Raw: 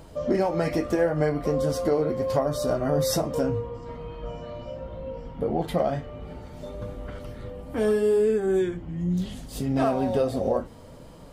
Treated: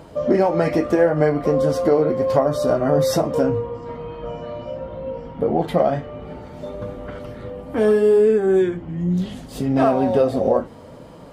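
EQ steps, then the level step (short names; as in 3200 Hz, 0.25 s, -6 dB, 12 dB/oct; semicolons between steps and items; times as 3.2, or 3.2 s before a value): HPF 150 Hz 6 dB/oct; high shelf 3600 Hz -9.5 dB; +7.5 dB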